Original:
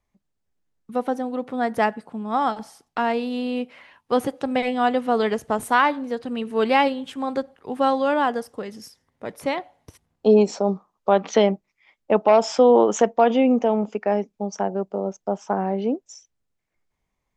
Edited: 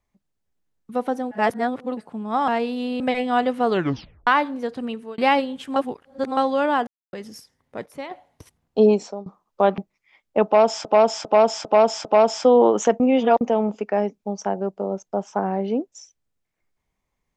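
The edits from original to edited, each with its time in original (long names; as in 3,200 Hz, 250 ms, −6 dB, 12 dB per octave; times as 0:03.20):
0:01.31–0:01.97: reverse
0:02.48–0:03.02: remove
0:03.54–0:04.48: remove
0:05.18: tape stop 0.57 s
0:06.33–0:06.66: fade out
0:07.24–0:07.85: reverse
0:08.35–0:08.61: silence
0:09.34–0:09.59: clip gain −9 dB
0:10.34–0:10.74: fade out, to −23.5 dB
0:11.26–0:11.52: remove
0:12.19–0:12.59: repeat, 5 plays
0:13.14–0:13.55: reverse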